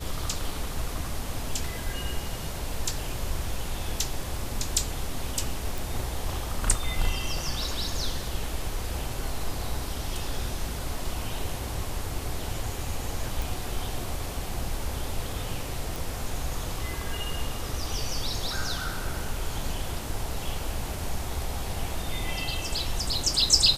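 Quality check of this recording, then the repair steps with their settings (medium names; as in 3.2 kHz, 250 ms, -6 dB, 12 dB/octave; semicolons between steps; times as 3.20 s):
5.78 s: pop
13.42 s: pop
15.96 s: pop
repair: de-click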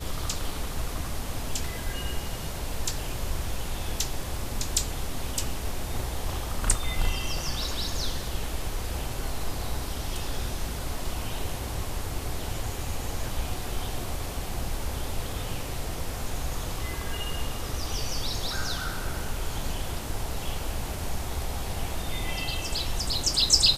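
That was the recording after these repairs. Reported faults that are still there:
nothing left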